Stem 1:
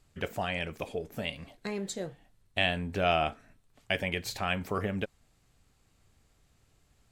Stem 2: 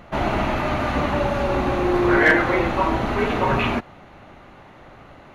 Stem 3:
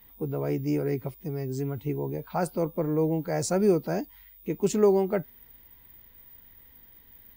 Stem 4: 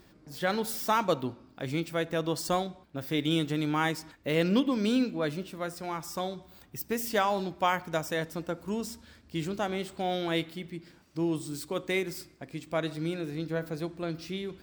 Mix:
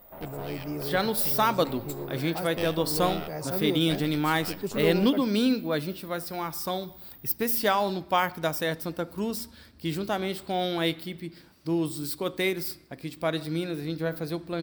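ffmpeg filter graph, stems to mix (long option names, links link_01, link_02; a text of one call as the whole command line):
ffmpeg -i stem1.wav -i stem2.wav -i stem3.wav -i stem4.wav -filter_complex "[0:a]equalizer=frequency=7700:width_type=o:width=0.4:gain=13,aeval=exprs='max(val(0),0)':channel_layout=same,volume=-7.5dB[link_01];[1:a]lowpass=2500,equalizer=frequency=570:width_type=o:width=1.4:gain=9,acompressor=threshold=-30dB:ratio=2,volume=-19dB[link_02];[2:a]volume=-7.5dB[link_03];[3:a]adelay=500,volume=2.5dB[link_04];[link_01][link_02][link_03][link_04]amix=inputs=4:normalize=0,aexciter=amount=1.4:drive=3.6:freq=3800" out.wav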